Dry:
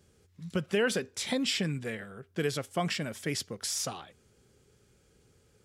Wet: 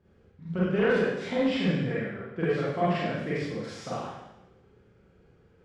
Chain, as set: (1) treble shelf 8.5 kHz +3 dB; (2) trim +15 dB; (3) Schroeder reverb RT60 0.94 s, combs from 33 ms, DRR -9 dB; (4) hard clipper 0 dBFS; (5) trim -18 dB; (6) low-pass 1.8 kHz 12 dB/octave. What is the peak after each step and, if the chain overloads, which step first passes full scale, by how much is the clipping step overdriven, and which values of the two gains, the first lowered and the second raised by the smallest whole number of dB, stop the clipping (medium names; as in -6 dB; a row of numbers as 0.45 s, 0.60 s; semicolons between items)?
-16.5 dBFS, -1.5 dBFS, +8.5 dBFS, 0.0 dBFS, -18.0 dBFS, -17.5 dBFS; step 3, 8.5 dB; step 2 +6 dB, step 5 -9 dB